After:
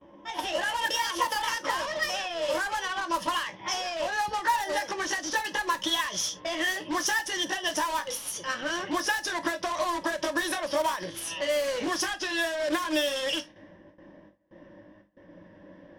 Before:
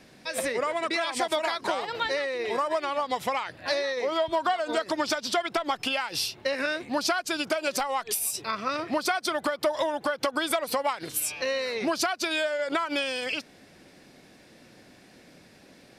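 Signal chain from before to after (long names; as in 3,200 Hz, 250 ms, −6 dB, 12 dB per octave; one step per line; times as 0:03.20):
pitch glide at a constant tempo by +6 semitones ending unshifted
noise gate with hold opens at −45 dBFS
EQ curve with evenly spaced ripples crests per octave 1.2, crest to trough 12 dB
in parallel at −5.5 dB: wrap-around overflow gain 28 dB
on the sum: low-pass that shuts in the quiet parts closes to 1,100 Hz, open at −22 dBFS
convolution reverb, pre-delay 3 ms, DRR 9 dB
level −2 dB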